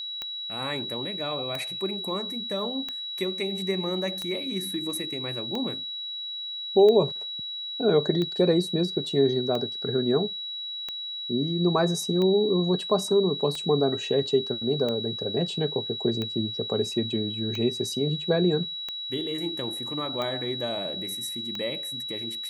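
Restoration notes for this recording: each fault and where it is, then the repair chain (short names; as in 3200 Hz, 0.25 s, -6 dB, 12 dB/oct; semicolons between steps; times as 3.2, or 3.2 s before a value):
tick 45 rpm -18 dBFS
tone 3900 Hz -32 dBFS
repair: de-click; notch 3900 Hz, Q 30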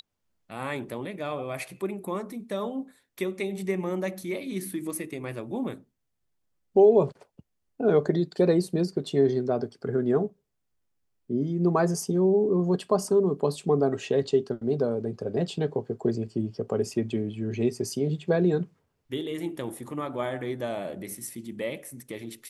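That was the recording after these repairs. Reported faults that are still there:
none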